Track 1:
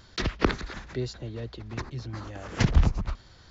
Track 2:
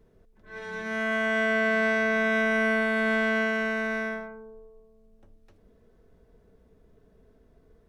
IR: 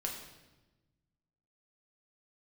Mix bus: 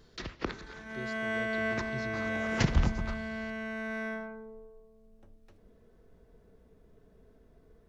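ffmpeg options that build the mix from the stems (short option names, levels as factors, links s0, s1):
-filter_complex "[0:a]lowshelf=f=150:g=-4.5,volume=0.631,afade=t=in:st=1.24:d=0.55:silence=0.375837,asplit=3[s0][s1][s2];[s1]volume=0.316[s3];[1:a]volume=0.841,asplit=2[s4][s5];[s5]volume=0.1[s6];[s2]apad=whole_len=347723[s7];[s4][s7]sidechaincompress=threshold=0.00398:ratio=8:attack=5.5:release=887[s8];[2:a]atrim=start_sample=2205[s9];[s3][s6]amix=inputs=2:normalize=0[s10];[s10][s9]afir=irnorm=-1:irlink=0[s11];[s0][s8][s11]amix=inputs=3:normalize=0"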